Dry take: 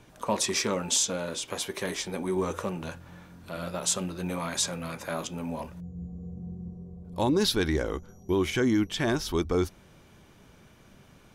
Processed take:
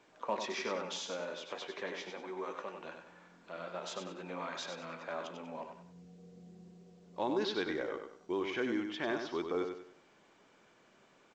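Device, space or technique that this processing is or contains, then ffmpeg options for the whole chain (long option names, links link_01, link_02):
telephone: -filter_complex "[0:a]asettb=1/sr,asplit=3[link_01][link_02][link_03];[link_01]atrim=end=2.104[link_04];[link_02]atrim=start=2.1:end=2.85,asetpts=PTS-STARTPTS,afade=type=in:duration=0.004:curve=qsin,afade=type=out:start_time=0.746:duration=0.004:curve=qsin,equalizer=frequency=140:width=0.35:gain=-8[link_05];[link_03]atrim=start=2.846[link_06];[link_04][link_05]acrossfade=duration=0.004:curve1=hsin:curve2=qsin[link_07];[link_07][link_06]acrossfade=duration=0.004:curve1=qsin:curve2=hsin,highpass=340,lowpass=3000,aecho=1:1:96|192|288|384:0.473|0.161|0.0547|0.0186,volume=-6.5dB" -ar 16000 -c:a pcm_alaw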